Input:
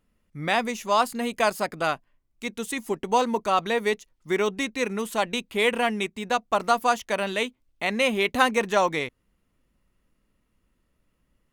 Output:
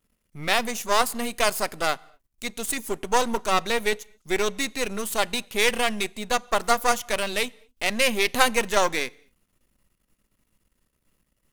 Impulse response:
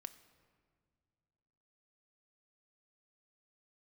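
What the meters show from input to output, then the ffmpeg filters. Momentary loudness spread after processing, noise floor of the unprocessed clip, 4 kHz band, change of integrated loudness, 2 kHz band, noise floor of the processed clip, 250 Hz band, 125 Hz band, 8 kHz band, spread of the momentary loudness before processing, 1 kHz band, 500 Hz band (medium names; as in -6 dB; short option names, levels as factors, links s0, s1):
8 LU, -72 dBFS, +4.0 dB, +0.5 dB, +1.5 dB, -75 dBFS, -2.5 dB, -2.5 dB, +8.0 dB, 8 LU, -1.0 dB, -1.0 dB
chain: -filter_complex "[0:a]aeval=exprs='if(lt(val(0),0),0.251*val(0),val(0))':c=same,highshelf=f=4600:g=11.5,asplit=2[s0][s1];[1:a]atrim=start_sample=2205,afade=t=out:st=0.21:d=0.01,atrim=end_sample=9702,asetrate=29106,aresample=44100[s2];[s1][s2]afir=irnorm=-1:irlink=0,volume=0.473[s3];[s0][s3]amix=inputs=2:normalize=0"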